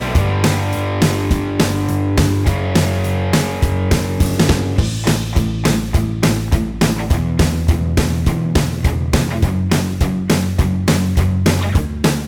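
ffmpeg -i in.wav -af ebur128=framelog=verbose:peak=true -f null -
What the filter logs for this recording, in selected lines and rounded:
Integrated loudness:
  I:         -16.7 LUFS
  Threshold: -26.7 LUFS
Loudness range:
  LRA:         0.6 LU
  Threshold: -36.8 LUFS
  LRA low:   -17.0 LUFS
  LRA high:  -16.4 LUFS
True peak:
  Peak:       -4.4 dBFS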